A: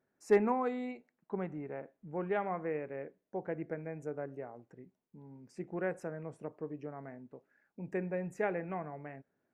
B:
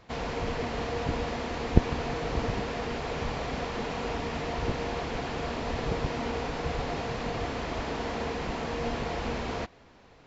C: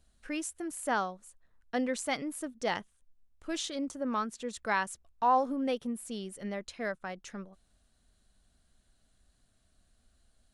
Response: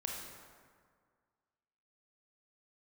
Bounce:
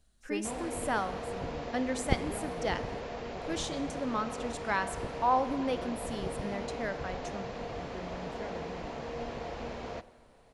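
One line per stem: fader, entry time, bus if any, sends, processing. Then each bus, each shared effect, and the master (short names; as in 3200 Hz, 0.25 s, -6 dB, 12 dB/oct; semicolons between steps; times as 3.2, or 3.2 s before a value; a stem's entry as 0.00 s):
-12.5 dB, 0.00 s, no send, tone controls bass +10 dB, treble +4 dB
-10.5 dB, 0.35 s, send -13.5 dB, bell 580 Hz +6 dB 0.82 oct
-3.0 dB, 0.00 s, send -9.5 dB, dry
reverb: on, RT60 1.9 s, pre-delay 23 ms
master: dry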